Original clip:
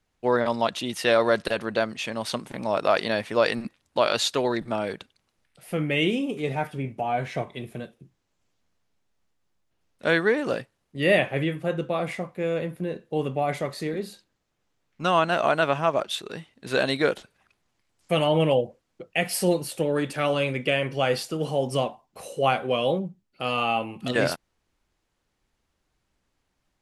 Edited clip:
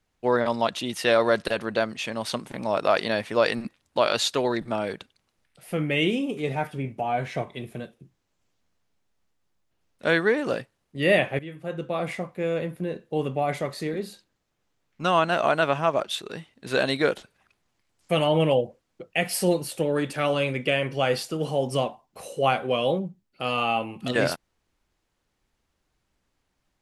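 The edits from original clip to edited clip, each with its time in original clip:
0:11.39–0:12.07: fade in, from −16.5 dB

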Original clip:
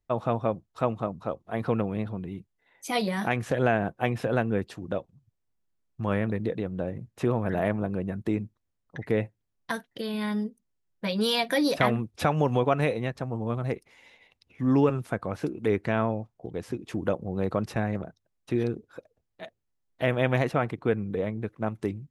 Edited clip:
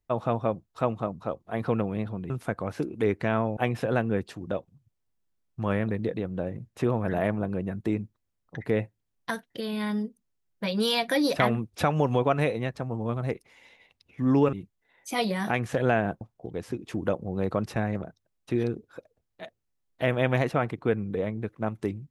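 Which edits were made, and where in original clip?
0:02.30–0:03.98: swap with 0:14.94–0:16.21

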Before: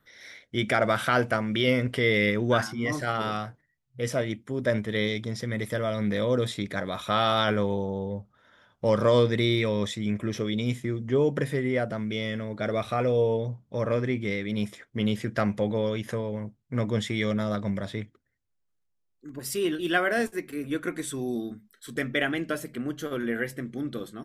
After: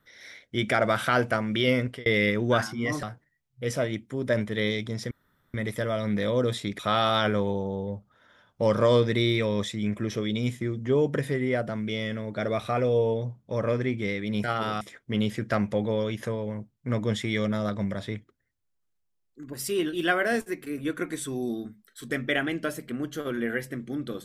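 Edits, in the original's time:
0:01.80–0:02.06: fade out
0:03.03–0:03.40: move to 0:14.67
0:05.48: splice in room tone 0.43 s
0:06.73–0:07.02: remove

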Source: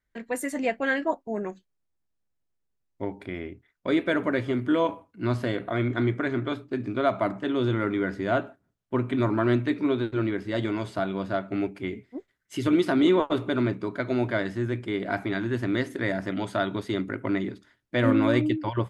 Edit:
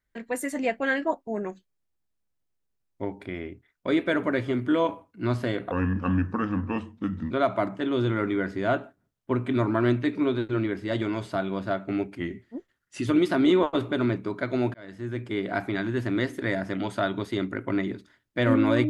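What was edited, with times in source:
0:05.71–0:06.94: play speed 77%
0:11.80–0:12.64: play speed 93%
0:14.31–0:14.89: fade in

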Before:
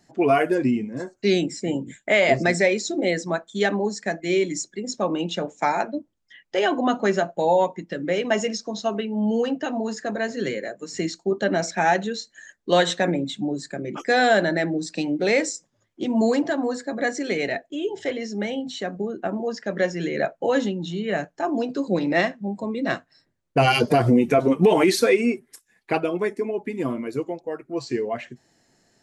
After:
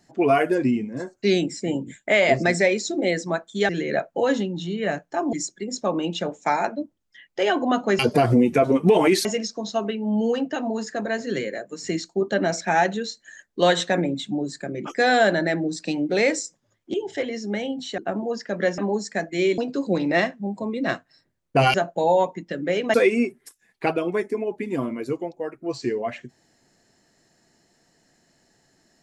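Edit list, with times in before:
0:03.69–0:04.49: swap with 0:19.95–0:21.59
0:07.15–0:08.35: swap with 0:23.75–0:25.01
0:16.04–0:17.82: remove
0:18.86–0:19.15: remove

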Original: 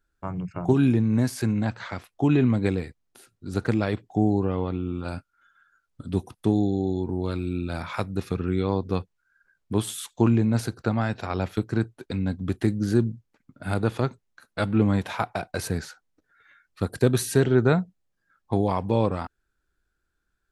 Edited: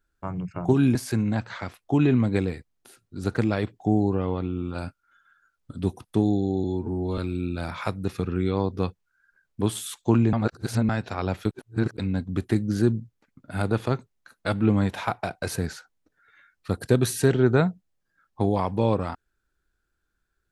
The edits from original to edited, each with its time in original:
0:00.95–0:01.25: remove
0:06.94–0:07.30: time-stretch 1.5×
0:10.45–0:11.01: reverse
0:11.63–0:12.09: reverse

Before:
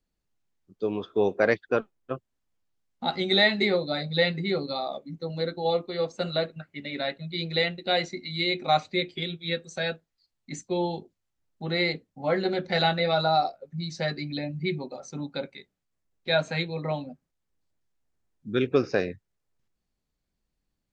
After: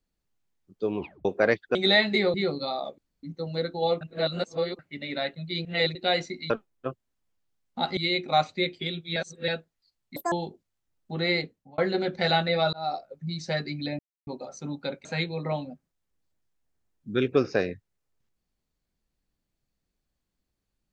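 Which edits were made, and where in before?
0:00.98: tape stop 0.27 s
0:01.75–0:03.22: move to 0:08.33
0:03.81–0:04.42: remove
0:05.06: splice in room tone 0.25 s
0:05.84–0:06.62: reverse
0:07.48–0:07.78: reverse
0:09.52–0:09.84: reverse
0:10.52–0:10.83: play speed 194%
0:11.86–0:12.29: fade out equal-power
0:13.24–0:13.56: fade in
0:14.50–0:14.78: silence
0:15.56–0:16.44: remove

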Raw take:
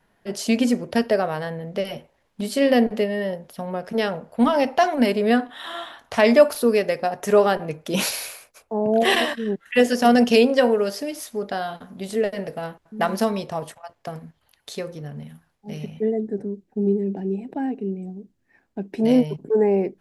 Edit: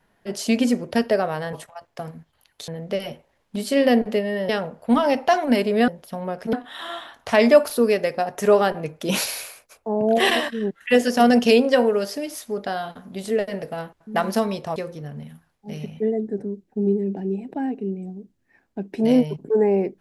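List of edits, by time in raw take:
0:03.34–0:03.99: move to 0:05.38
0:13.61–0:14.76: move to 0:01.53

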